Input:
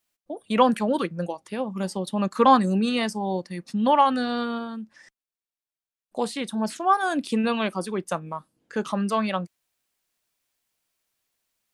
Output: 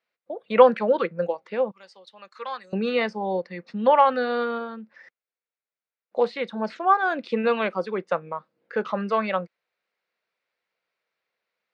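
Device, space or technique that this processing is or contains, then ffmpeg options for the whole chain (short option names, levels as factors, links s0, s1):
kitchen radio: -filter_complex "[0:a]asettb=1/sr,asplit=3[s0][s1][s2];[s0]atrim=end=1.714[s3];[s1]atrim=start=1.71:end=2.73,asetpts=PTS-STARTPTS,afade=t=in:d=0.004:c=qsin,afade=t=out:st=1.016:d=0.004:c=qsin,aderivative[s4];[s2]atrim=start=2.726[s5];[s3][s4]acrossfade=d=0.004:c1=hsin:c2=qsin[s6];[s6][s5]acrossfade=d=0.004:c1=qsin:c2=hsin,highpass=210,equalizer=f=280:t=q:w=4:g=-9,equalizer=f=500:t=q:w=4:g=9,equalizer=f=1400:t=q:w=4:g=4,equalizer=f=2100:t=q:w=4:g=5,equalizer=f=3200:t=q:w=4:g=-6,lowpass=f=4000:w=0.5412,lowpass=f=4000:w=1.3066"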